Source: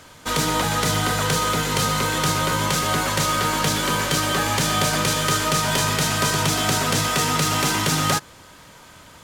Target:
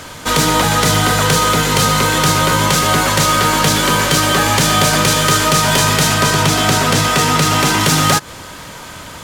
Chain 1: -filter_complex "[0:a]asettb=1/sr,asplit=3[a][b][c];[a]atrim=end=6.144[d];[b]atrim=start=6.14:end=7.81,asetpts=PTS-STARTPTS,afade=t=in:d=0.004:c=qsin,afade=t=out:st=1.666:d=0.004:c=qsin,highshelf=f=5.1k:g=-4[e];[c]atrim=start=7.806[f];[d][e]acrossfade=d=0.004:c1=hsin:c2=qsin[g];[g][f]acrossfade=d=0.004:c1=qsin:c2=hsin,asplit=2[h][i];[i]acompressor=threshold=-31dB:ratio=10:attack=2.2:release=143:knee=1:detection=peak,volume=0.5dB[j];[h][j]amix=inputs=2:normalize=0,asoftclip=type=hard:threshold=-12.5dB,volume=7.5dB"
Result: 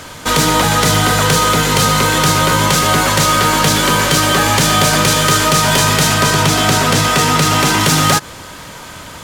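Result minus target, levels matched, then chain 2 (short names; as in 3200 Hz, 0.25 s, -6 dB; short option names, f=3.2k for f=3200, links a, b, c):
compressor: peak gain reduction -7.5 dB
-filter_complex "[0:a]asettb=1/sr,asplit=3[a][b][c];[a]atrim=end=6.144[d];[b]atrim=start=6.14:end=7.81,asetpts=PTS-STARTPTS,afade=t=in:d=0.004:c=qsin,afade=t=out:st=1.666:d=0.004:c=qsin,highshelf=f=5.1k:g=-4[e];[c]atrim=start=7.806[f];[d][e]acrossfade=d=0.004:c1=hsin:c2=qsin[g];[g][f]acrossfade=d=0.004:c1=qsin:c2=hsin,asplit=2[h][i];[i]acompressor=threshold=-39.5dB:ratio=10:attack=2.2:release=143:knee=1:detection=peak,volume=0.5dB[j];[h][j]amix=inputs=2:normalize=0,asoftclip=type=hard:threshold=-12.5dB,volume=7.5dB"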